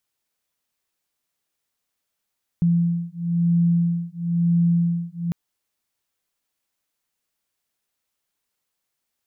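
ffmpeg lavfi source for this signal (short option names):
-f lavfi -i "aevalsrc='0.0944*(sin(2*PI*170*t)+sin(2*PI*171*t))':d=2.7:s=44100"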